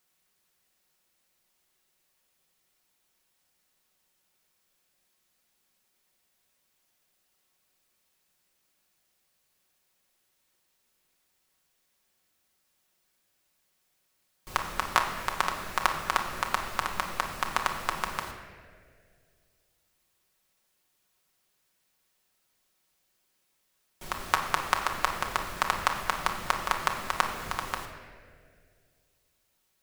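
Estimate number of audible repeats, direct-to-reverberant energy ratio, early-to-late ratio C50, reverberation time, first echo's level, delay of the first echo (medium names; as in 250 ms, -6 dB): no echo, 1.0 dB, 6.0 dB, 2.1 s, no echo, no echo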